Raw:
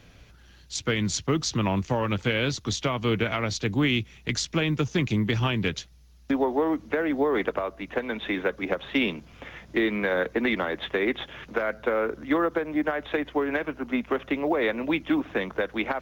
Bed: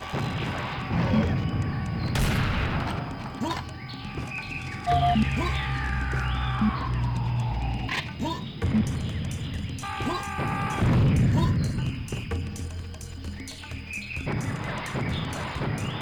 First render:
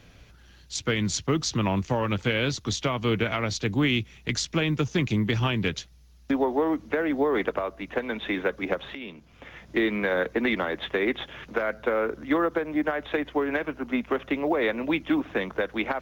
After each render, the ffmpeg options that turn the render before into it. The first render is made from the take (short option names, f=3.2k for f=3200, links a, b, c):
-filter_complex "[0:a]asplit=2[a][b];[a]atrim=end=8.95,asetpts=PTS-STARTPTS,afade=t=out:st=8.946:d=0.004:c=hsin:silence=0.11885[c];[b]atrim=start=8.95,asetpts=PTS-STARTPTS,afade=t=in:d=0.82:silence=0.11885[d];[c][d]concat=n=2:v=0:a=1"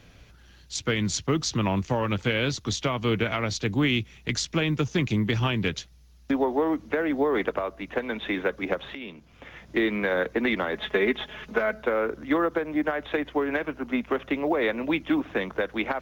-filter_complex "[0:a]asettb=1/sr,asplit=3[a][b][c];[a]atrim=end=10.734[d];[b]atrim=start=10.73:end=11.83,asetpts=PTS-STARTPTS,afade=t=in:d=0.004:c=qsin,afade=t=out:st=1.096:d=0.004:c=qsin,aecho=1:1:4.7:0.68,atrim=end_sample=48510[e];[c]atrim=start=11.826[f];[d][e]acrossfade=d=0.004:c1=hsin:c2=qsin[g];[g][f]acrossfade=d=0.004:c1=qsin:c2=hsin"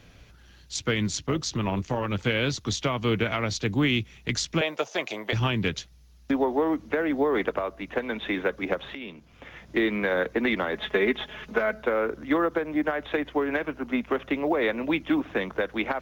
-filter_complex "[0:a]asplit=3[a][b][c];[a]afade=t=out:st=1.06:d=0.02[d];[b]tremolo=f=210:d=0.519,afade=t=in:st=1.06:d=0.02,afade=t=out:st=2.13:d=0.02[e];[c]afade=t=in:st=2.13:d=0.02[f];[d][e][f]amix=inputs=3:normalize=0,asettb=1/sr,asplit=3[g][h][i];[g]atrim=end=4.614[j];[h]atrim=start=4.61:end=5.33,asetpts=PTS-STARTPTS,afade=t=in:d=0.004:c=qsin,afade=t=out:st=0.716:d=0.004:c=qsin,highpass=f=630:t=q:w=4.7[k];[i]atrim=start=5.326[l];[j][k]acrossfade=d=0.004:c1=hsin:c2=qsin[m];[m][l]acrossfade=d=0.004:c1=qsin:c2=hsin"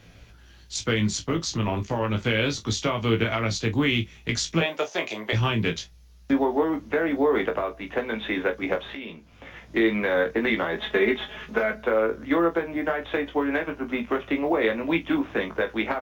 -filter_complex "[0:a]asplit=2[a][b];[b]adelay=29,volume=-14dB[c];[a][c]amix=inputs=2:normalize=0,asplit=2[d][e];[e]aecho=0:1:18|42:0.562|0.188[f];[d][f]amix=inputs=2:normalize=0"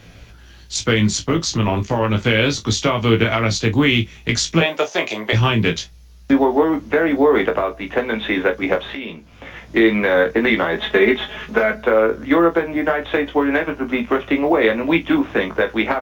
-af "volume=7.5dB"